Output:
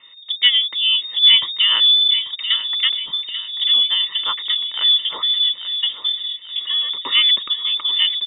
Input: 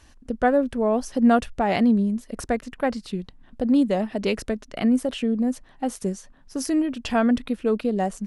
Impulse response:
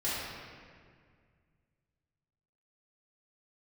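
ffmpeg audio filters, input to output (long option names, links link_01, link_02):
-filter_complex "[0:a]aecho=1:1:1.2:0.83,asplit=2[link_01][link_02];[link_02]adelay=839,lowpass=frequency=2400:poles=1,volume=-9.5dB,asplit=2[link_03][link_04];[link_04]adelay=839,lowpass=frequency=2400:poles=1,volume=0.53,asplit=2[link_05][link_06];[link_06]adelay=839,lowpass=frequency=2400:poles=1,volume=0.53,asplit=2[link_07][link_08];[link_08]adelay=839,lowpass=frequency=2400:poles=1,volume=0.53,asplit=2[link_09][link_10];[link_10]adelay=839,lowpass=frequency=2400:poles=1,volume=0.53,asplit=2[link_11][link_12];[link_12]adelay=839,lowpass=frequency=2400:poles=1,volume=0.53[link_13];[link_01][link_03][link_05][link_07][link_09][link_11][link_13]amix=inputs=7:normalize=0,lowpass=frequency=3100:width_type=q:width=0.5098,lowpass=frequency=3100:width_type=q:width=0.6013,lowpass=frequency=3100:width_type=q:width=0.9,lowpass=frequency=3100:width_type=q:width=2.563,afreqshift=-3700,volume=3dB"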